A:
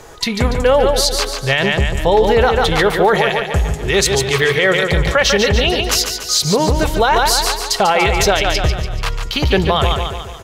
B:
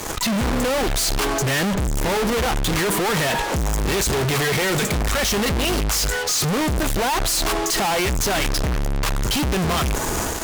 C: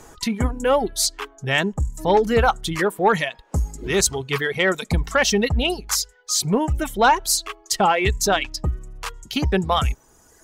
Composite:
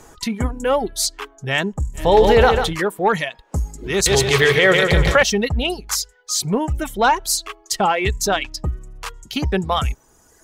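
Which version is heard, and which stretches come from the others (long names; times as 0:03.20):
C
0:02.05–0:02.62: punch in from A, crossfade 0.24 s
0:04.06–0:05.23: punch in from A
not used: B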